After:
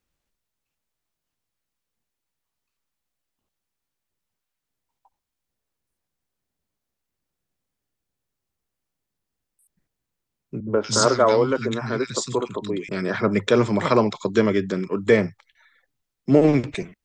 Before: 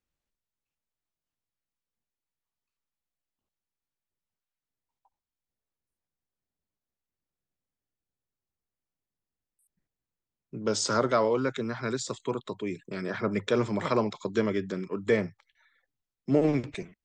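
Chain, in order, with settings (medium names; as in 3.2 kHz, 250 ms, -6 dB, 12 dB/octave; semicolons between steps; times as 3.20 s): 10.60–12.89 s: three bands offset in time lows, mids, highs 70/170 ms, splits 220/1800 Hz; trim +8 dB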